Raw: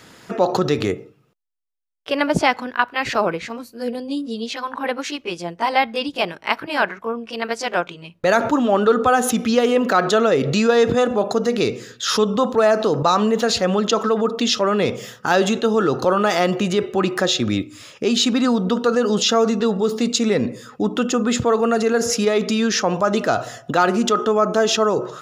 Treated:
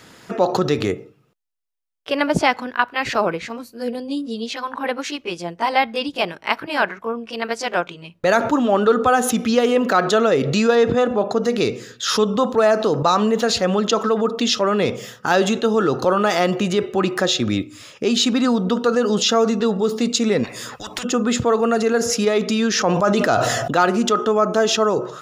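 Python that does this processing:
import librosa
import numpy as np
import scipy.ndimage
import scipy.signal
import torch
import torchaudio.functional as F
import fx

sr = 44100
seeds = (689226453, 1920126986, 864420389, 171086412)

y = fx.high_shelf(x, sr, hz=5900.0, db=-11.0, at=(10.75, 11.43))
y = fx.spectral_comp(y, sr, ratio=10.0, at=(20.43, 21.03), fade=0.02)
y = fx.sustainer(y, sr, db_per_s=26.0, at=(22.73, 23.85))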